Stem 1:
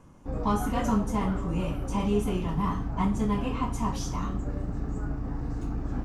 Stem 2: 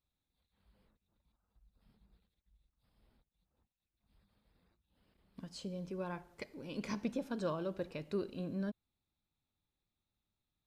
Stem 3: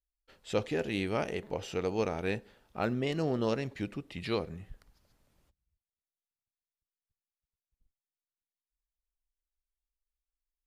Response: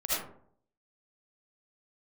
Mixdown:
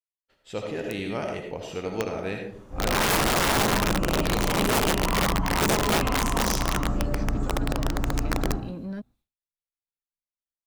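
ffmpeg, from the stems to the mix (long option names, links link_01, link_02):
-filter_complex "[0:a]adelay=2450,volume=-4dB,asplit=3[link_01][link_02][link_03];[link_02]volume=-3.5dB[link_04];[link_03]volume=-8dB[link_05];[1:a]asoftclip=type=tanh:threshold=-34dB,adelay=300,volume=2.5dB[link_06];[2:a]volume=-6.5dB,asplit=3[link_07][link_08][link_09];[link_08]volume=-6.5dB[link_10];[link_09]apad=whole_len=374748[link_11];[link_01][link_11]sidechaincompress=threshold=-60dB:ratio=8:attack=16:release=528[link_12];[link_12][link_06]amix=inputs=2:normalize=0,acrossover=split=220[link_13][link_14];[link_14]acompressor=threshold=-40dB:ratio=3[link_15];[link_13][link_15]amix=inputs=2:normalize=0,alimiter=level_in=5.5dB:limit=-24dB:level=0:latency=1:release=16,volume=-5.5dB,volume=0dB[link_16];[3:a]atrim=start_sample=2205[link_17];[link_04][link_10]amix=inputs=2:normalize=0[link_18];[link_18][link_17]afir=irnorm=-1:irlink=0[link_19];[link_05]aecho=0:1:221|442|663:1|0.17|0.0289[link_20];[link_07][link_16][link_19][link_20]amix=inputs=4:normalize=0,aeval=exprs='(mod(11.2*val(0)+1,2)-1)/11.2':channel_layout=same,dynaudnorm=framelen=460:gausssize=3:maxgain=4dB,agate=range=-33dB:threshold=-58dB:ratio=3:detection=peak"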